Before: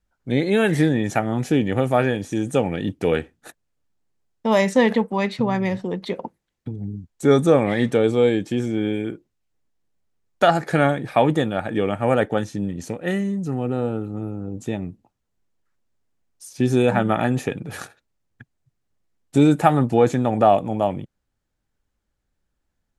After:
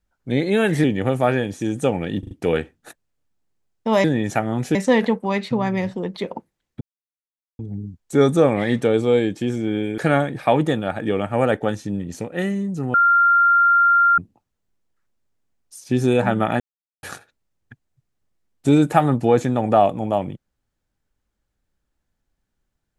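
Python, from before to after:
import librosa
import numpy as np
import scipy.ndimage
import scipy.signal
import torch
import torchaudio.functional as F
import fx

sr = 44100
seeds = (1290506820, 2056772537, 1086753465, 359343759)

y = fx.edit(x, sr, fx.move(start_s=0.84, length_s=0.71, to_s=4.63),
    fx.stutter(start_s=2.9, slice_s=0.04, count=4),
    fx.insert_silence(at_s=6.69, length_s=0.78),
    fx.cut(start_s=9.08, length_s=1.59),
    fx.bleep(start_s=13.63, length_s=1.24, hz=1390.0, db=-11.5),
    fx.silence(start_s=17.29, length_s=0.43), tone=tone)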